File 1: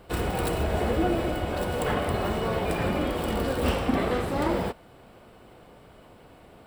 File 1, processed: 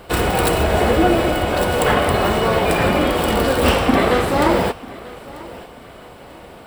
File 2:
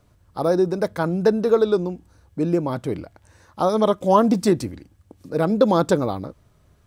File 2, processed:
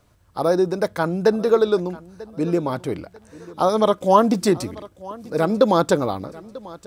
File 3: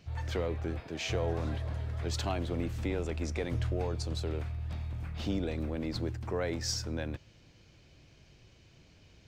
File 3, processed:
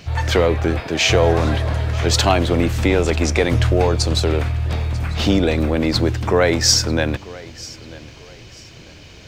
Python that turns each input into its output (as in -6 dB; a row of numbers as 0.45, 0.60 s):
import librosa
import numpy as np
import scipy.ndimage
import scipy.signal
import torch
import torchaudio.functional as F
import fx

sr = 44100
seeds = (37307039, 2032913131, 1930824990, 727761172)

y = fx.low_shelf(x, sr, hz=420.0, db=-5.5)
y = fx.echo_feedback(y, sr, ms=942, feedback_pct=33, wet_db=-20.0)
y = librosa.util.normalize(y) * 10.0 ** (-1.5 / 20.0)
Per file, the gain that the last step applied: +13.0, +3.0, +20.5 dB